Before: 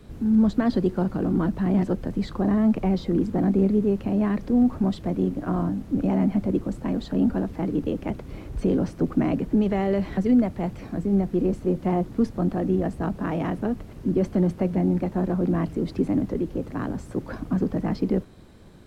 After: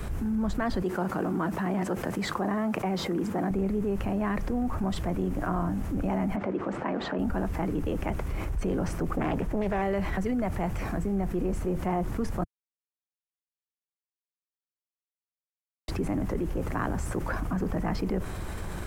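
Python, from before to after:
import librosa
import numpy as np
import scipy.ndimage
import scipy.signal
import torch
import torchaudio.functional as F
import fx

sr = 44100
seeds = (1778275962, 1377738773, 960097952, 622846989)

y = fx.highpass(x, sr, hz=190.0, slope=12, at=(0.82, 3.51))
y = fx.bandpass_edges(y, sr, low_hz=270.0, high_hz=2600.0, at=(6.35, 7.18), fade=0.02)
y = fx.doppler_dist(y, sr, depth_ms=0.55, at=(9.17, 9.82))
y = fx.edit(y, sr, fx.silence(start_s=12.44, length_s=3.44), tone=tone)
y = fx.graphic_eq(y, sr, hz=(125, 250, 500, 4000), db=(-6, -11, -6, -10))
y = fx.env_flatten(y, sr, amount_pct=70)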